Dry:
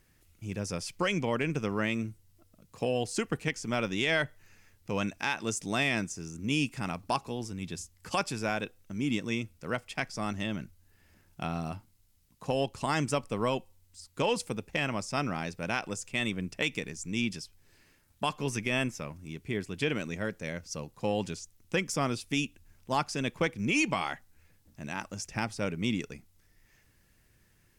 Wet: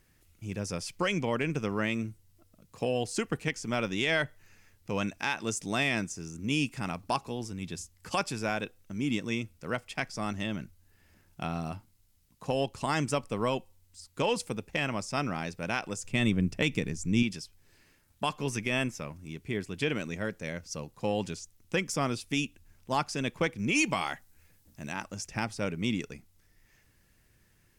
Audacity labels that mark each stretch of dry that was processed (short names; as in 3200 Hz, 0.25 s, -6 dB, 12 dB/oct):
16.040000	17.230000	low shelf 320 Hz +11 dB
23.750000	24.920000	high shelf 5700 Hz +6.5 dB